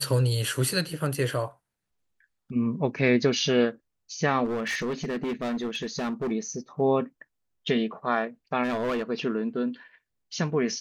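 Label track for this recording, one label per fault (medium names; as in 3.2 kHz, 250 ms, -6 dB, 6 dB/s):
4.440000	6.320000	clipped -25.5 dBFS
8.630000	9.030000	clipped -24 dBFS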